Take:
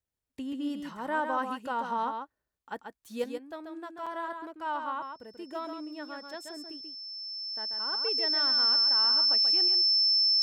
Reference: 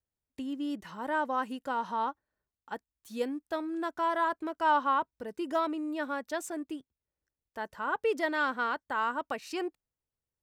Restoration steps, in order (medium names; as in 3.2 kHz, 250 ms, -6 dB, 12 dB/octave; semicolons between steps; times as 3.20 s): band-stop 5.3 kHz, Q 30; interpolate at 2.59/4.06 s, 5.4 ms; inverse comb 136 ms -6 dB; trim 0 dB, from 3.24 s +8 dB